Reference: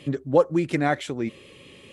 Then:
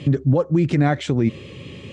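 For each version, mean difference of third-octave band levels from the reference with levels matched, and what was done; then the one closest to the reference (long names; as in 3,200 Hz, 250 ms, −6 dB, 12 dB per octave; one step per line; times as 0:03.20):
4.0 dB: downward compressor 4 to 1, threshold −24 dBFS, peak gain reduction 10.5 dB
parametric band 110 Hz +13 dB 2.3 octaves
brickwall limiter −15 dBFS, peak gain reduction 6.5 dB
low-pass filter 7,400 Hz 24 dB per octave
level +6 dB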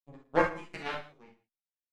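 10.5 dB: power curve on the samples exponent 3
single-tap delay 113 ms −16.5 dB
reverb whose tail is shaped and stops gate 90 ms flat, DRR −0.5 dB
barber-pole flanger 10.3 ms −1.7 Hz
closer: first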